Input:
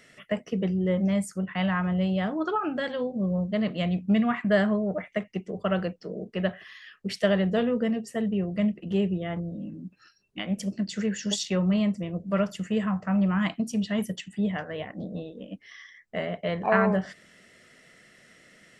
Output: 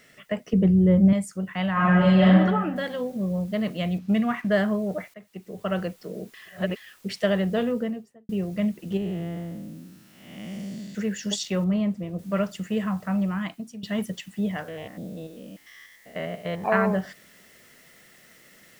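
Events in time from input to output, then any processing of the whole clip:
0.53–1.13 RIAA curve playback
1.73–2.26 reverb throw, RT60 1.3 s, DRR -10 dB
2.76 noise floor step -67 dB -58 dB
3.98–4.62 median filter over 5 samples
5.14–5.79 fade in, from -19.5 dB
6.34–6.76 reverse
7.67–8.29 studio fade out
8.97–10.95 time blur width 0.347 s
11.64–12.19 high shelf 2400 Hz -10 dB
13.06–13.83 fade out, to -14.5 dB
14.68–16.64 stepped spectrum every 0.1 s

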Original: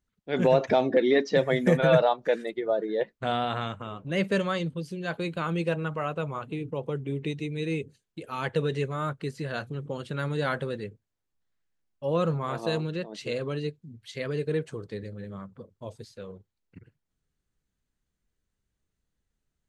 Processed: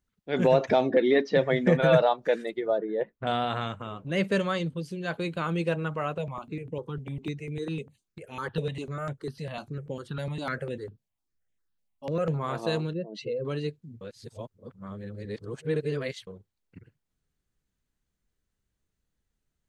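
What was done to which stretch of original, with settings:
0.91–1.8 LPF 4400 Hz
2.78–3.27 air absorption 490 m
6.18–12.34 step phaser 10 Hz 330–4500 Hz
12.93–13.45 spectral contrast raised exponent 1.9
14.01–16.27 reverse

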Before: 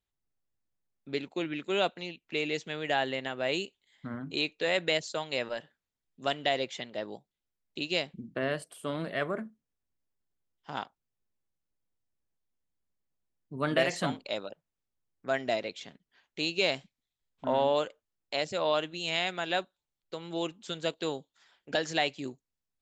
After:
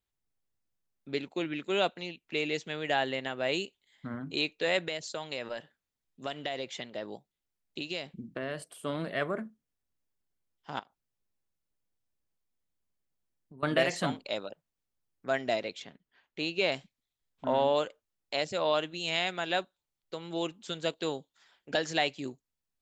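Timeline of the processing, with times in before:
4.86–8.73 compressor 3:1, threshold -32 dBFS
10.79–13.63 compressor, threshold -48 dBFS
15.82–16.72 tone controls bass -1 dB, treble -9 dB

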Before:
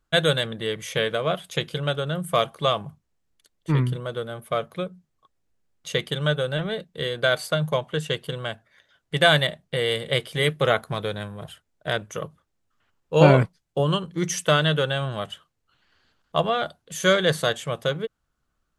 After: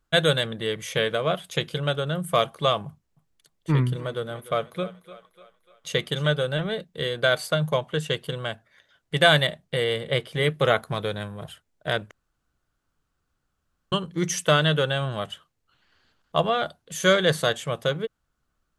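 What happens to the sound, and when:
2.87–6.46 thinning echo 0.296 s, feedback 52%, high-pass 320 Hz, level -15 dB
9.84–10.54 high shelf 3500 Hz -7.5 dB
12.11–13.92 room tone

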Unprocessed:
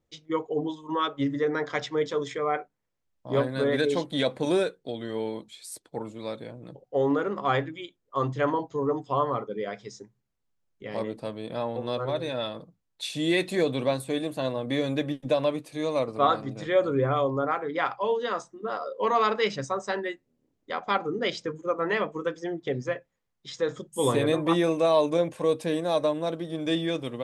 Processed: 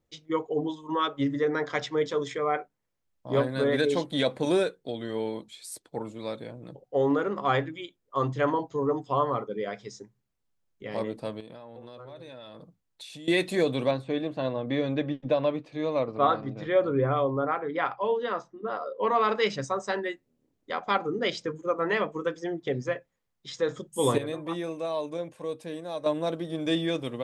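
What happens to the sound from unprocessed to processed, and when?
11.4–13.28 compressor 16:1, threshold -40 dBFS
13.91–19.29 air absorption 190 m
24.18–26.06 gain -9.5 dB

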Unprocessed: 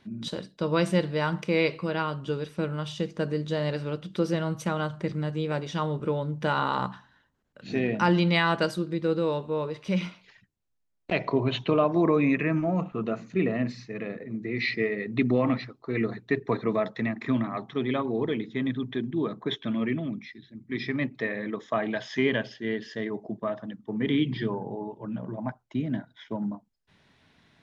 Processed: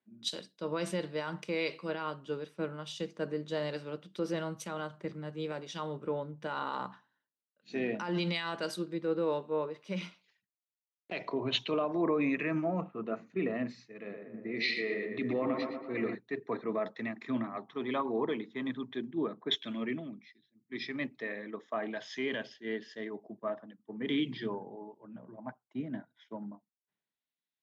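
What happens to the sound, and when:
13.93–16.15 tape echo 0.117 s, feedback 74%, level -4 dB, low-pass 2200 Hz
17.67–18.93 bell 1000 Hz +8 dB 0.64 oct
whole clip: HPF 220 Hz 12 dB/oct; limiter -20 dBFS; three-band expander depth 100%; gain -4.5 dB

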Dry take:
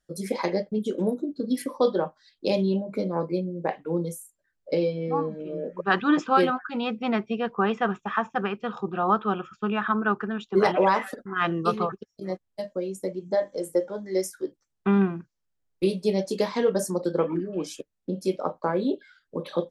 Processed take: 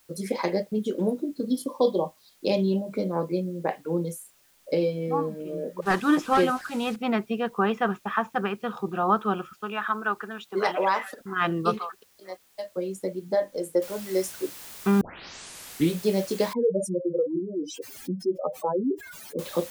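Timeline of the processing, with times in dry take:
1.47–2.43 spectral delete 1200–3000 Hz
5.82–6.96 delta modulation 64 kbps, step -37 dBFS
9.53–11.21 HPF 700 Hz 6 dB/oct
11.77–12.76 HPF 1300 Hz -> 450 Hz
13.82 noise floor step -62 dB -43 dB
15.01 tape start 0.99 s
16.53–19.39 spectral contrast raised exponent 3.3

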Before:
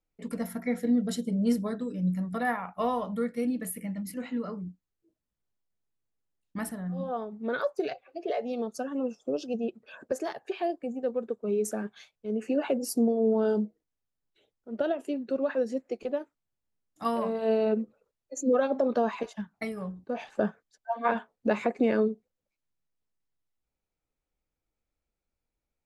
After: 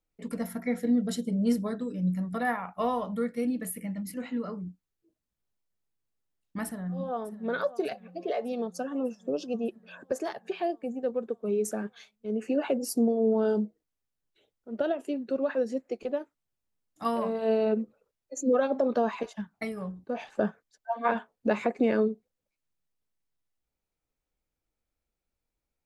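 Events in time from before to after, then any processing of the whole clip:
6.64–7.47 echo throw 0.6 s, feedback 70%, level -16 dB

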